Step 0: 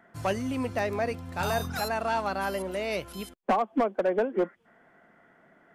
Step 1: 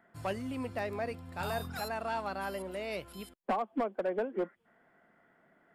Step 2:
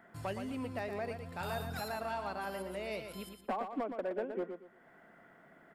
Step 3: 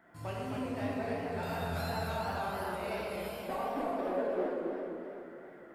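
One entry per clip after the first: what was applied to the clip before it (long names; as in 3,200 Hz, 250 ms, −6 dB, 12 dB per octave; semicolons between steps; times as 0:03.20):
notch filter 6,100 Hz, Q 5.3; level −7 dB
downward compressor 1.5 to 1, threshold −58 dBFS, peak gain reduction 10.5 dB; repeating echo 118 ms, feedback 26%, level −7.5 dB; level +5.5 dB
dense smooth reverb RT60 2.3 s, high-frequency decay 0.6×, DRR −4.5 dB; feedback echo with a swinging delay time 264 ms, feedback 53%, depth 162 cents, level −5 dB; level −4.5 dB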